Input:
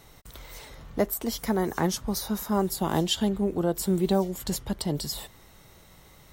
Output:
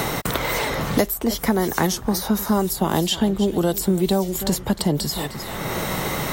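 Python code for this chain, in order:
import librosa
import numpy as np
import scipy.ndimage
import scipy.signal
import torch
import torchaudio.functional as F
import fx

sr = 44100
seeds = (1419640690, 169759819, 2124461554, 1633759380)

p1 = fx.high_shelf(x, sr, hz=11000.0, db=3.5)
p2 = p1 + fx.echo_single(p1, sr, ms=305, db=-17.5, dry=0)
p3 = fx.band_squash(p2, sr, depth_pct=100)
y = p3 * librosa.db_to_amplitude(5.5)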